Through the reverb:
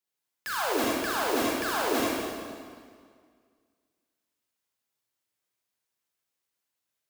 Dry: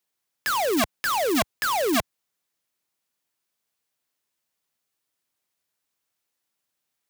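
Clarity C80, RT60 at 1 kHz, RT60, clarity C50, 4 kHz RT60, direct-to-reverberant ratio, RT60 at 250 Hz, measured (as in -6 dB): -1.0 dB, 1.9 s, 1.9 s, -3.5 dB, 1.7 s, -5.5 dB, 2.1 s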